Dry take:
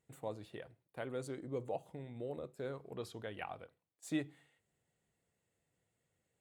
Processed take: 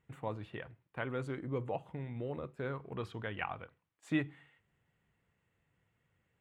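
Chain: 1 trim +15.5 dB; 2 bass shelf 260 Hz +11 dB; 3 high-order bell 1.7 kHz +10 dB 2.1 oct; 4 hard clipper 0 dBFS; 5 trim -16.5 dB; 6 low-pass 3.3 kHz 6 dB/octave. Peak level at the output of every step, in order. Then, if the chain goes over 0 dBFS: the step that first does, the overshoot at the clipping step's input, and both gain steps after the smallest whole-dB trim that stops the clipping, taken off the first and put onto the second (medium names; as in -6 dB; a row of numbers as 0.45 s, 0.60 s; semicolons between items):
-10.0 dBFS, -5.5 dBFS, -2.5 dBFS, -2.5 dBFS, -19.0 dBFS, -20.0 dBFS; nothing clips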